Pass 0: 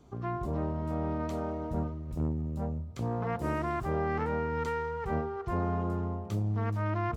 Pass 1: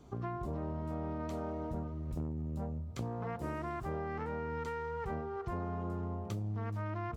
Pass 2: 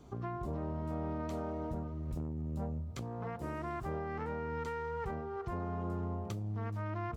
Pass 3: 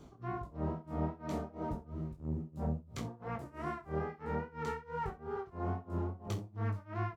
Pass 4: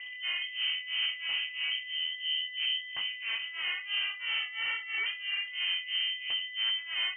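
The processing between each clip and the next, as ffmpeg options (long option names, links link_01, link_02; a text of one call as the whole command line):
ffmpeg -i in.wav -af "acompressor=threshold=-36dB:ratio=6,volume=1dB" out.wav
ffmpeg -i in.wav -af "alimiter=level_in=5dB:limit=-24dB:level=0:latency=1:release=456,volume=-5dB,volume=1dB" out.wav
ffmpeg -i in.wav -filter_complex "[0:a]tremolo=f=3:d=0.97,flanger=delay=18:depth=7.5:speed=2.4,asplit=2[link_01][link_02];[link_02]aecho=0:1:31|65:0.282|0.141[link_03];[link_01][link_03]amix=inputs=2:normalize=0,volume=6dB" out.wav
ffmpeg -i in.wav -af "asoftclip=type=tanh:threshold=-33.5dB,aeval=exprs='val(0)+0.00398*sin(2*PI*1200*n/s)':channel_layout=same,lowpass=frequency=2700:width_type=q:width=0.5098,lowpass=frequency=2700:width_type=q:width=0.6013,lowpass=frequency=2700:width_type=q:width=0.9,lowpass=frequency=2700:width_type=q:width=2.563,afreqshift=-3200,volume=7dB" out.wav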